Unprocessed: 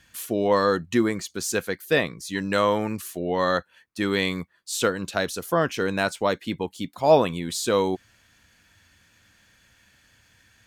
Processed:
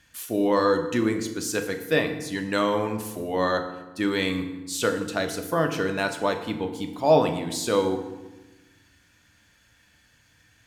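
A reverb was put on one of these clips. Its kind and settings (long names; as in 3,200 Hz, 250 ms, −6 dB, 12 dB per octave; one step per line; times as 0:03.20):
feedback delay network reverb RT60 1.1 s, low-frequency decay 1.5×, high-frequency decay 0.7×, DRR 5 dB
level −2.5 dB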